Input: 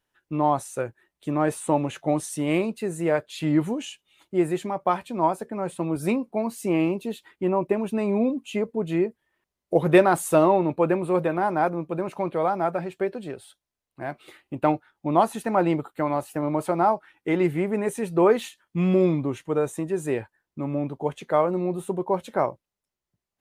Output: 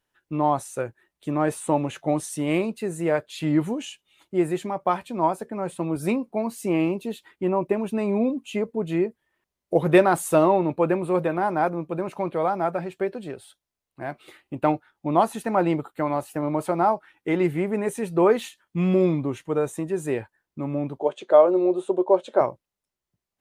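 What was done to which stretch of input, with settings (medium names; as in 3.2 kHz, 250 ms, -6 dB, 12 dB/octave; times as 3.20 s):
20.99–22.41 s: cabinet simulation 350–8000 Hz, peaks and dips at 360 Hz +9 dB, 590 Hz +9 dB, 2 kHz -7 dB, 3.5 kHz +4 dB, 5.6 kHz -4 dB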